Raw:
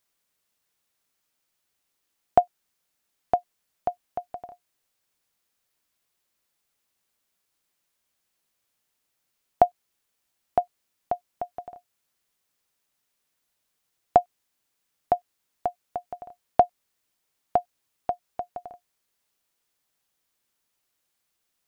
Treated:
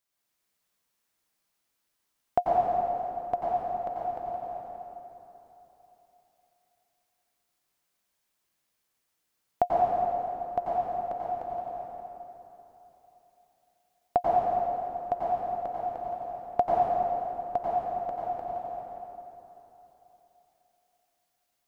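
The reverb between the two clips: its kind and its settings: plate-style reverb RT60 3.4 s, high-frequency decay 0.7×, pre-delay 80 ms, DRR -6.5 dB; trim -7.5 dB

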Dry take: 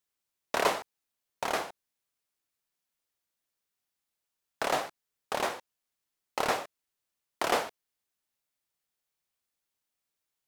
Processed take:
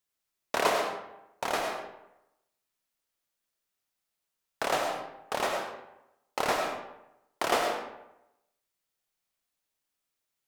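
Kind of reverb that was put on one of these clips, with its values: algorithmic reverb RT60 0.88 s, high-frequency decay 0.65×, pre-delay 55 ms, DRR 2.5 dB

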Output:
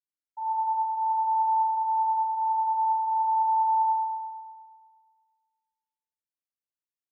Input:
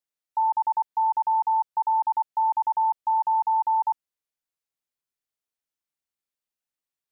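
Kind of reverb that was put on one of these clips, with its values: FDN reverb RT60 1.7 s, low-frequency decay 1.2×, high-frequency decay 0.65×, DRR -8 dB; trim -22 dB

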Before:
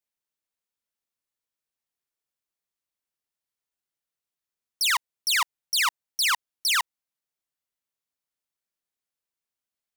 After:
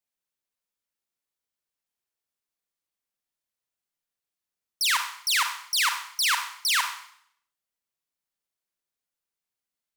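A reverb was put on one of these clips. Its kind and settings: Schroeder reverb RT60 0.64 s, combs from 32 ms, DRR 5.5 dB; trim -1 dB

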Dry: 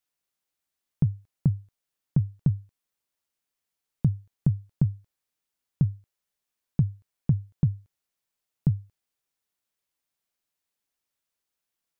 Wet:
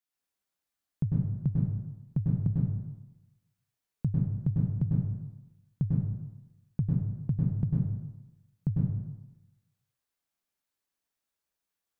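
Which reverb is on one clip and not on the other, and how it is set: plate-style reverb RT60 1 s, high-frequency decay 0.5×, pre-delay 90 ms, DRR -4.5 dB; trim -7 dB

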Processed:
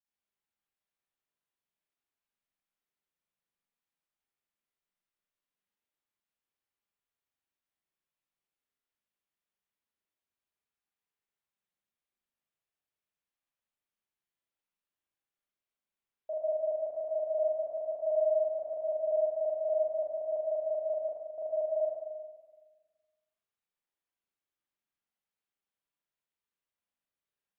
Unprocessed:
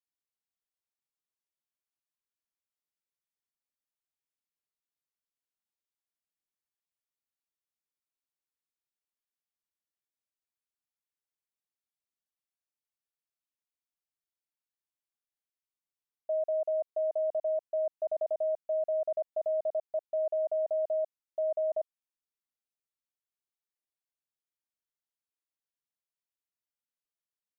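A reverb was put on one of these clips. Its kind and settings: spring tank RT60 1.4 s, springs 37/42 ms, chirp 50 ms, DRR -9 dB; trim -5.5 dB

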